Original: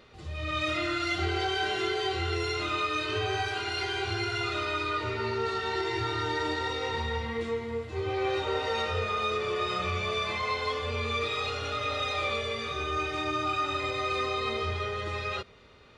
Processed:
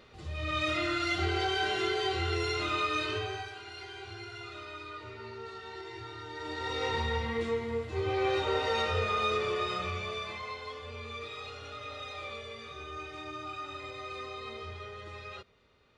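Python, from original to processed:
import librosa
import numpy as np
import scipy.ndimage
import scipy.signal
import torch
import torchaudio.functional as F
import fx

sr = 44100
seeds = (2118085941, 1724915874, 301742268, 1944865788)

y = fx.gain(x, sr, db=fx.line((3.05, -1.0), (3.57, -13.0), (6.3, -13.0), (6.82, 0.0), (9.38, 0.0), (10.64, -11.0)))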